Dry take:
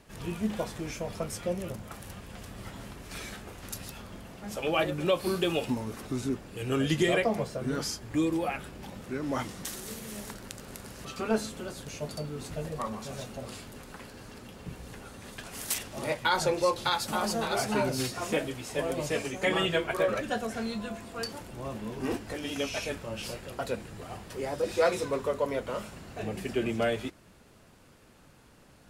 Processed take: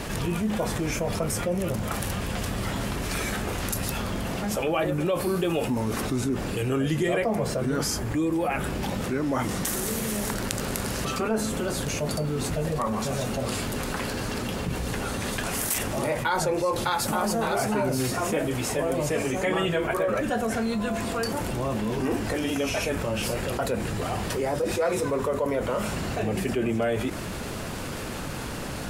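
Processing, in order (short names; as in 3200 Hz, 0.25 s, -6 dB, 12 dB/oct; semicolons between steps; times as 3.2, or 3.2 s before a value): dynamic EQ 4100 Hz, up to -8 dB, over -49 dBFS, Q 0.84; fast leveller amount 70%; gain -1 dB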